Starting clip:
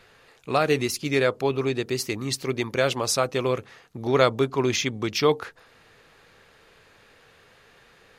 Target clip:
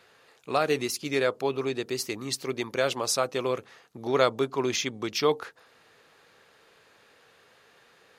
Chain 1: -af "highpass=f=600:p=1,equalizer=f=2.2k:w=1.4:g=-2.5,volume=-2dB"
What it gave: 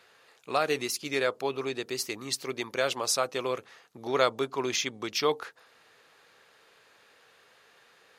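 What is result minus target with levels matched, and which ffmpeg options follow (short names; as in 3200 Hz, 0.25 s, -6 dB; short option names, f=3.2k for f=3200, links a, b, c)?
250 Hz band -2.5 dB
-af "highpass=f=270:p=1,equalizer=f=2.2k:w=1.4:g=-2.5,volume=-2dB"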